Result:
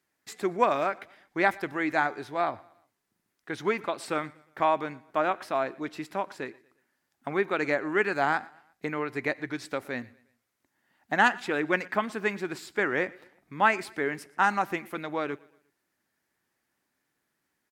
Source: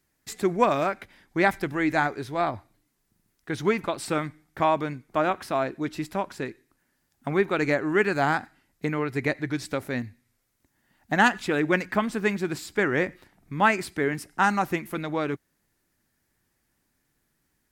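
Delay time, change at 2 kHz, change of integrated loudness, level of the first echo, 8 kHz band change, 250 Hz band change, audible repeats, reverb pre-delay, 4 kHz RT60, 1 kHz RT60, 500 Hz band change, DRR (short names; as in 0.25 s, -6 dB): 0.118 s, -1.5 dB, -2.5 dB, -24.0 dB, -6.5 dB, -6.0 dB, 2, none, none, none, -3.0 dB, none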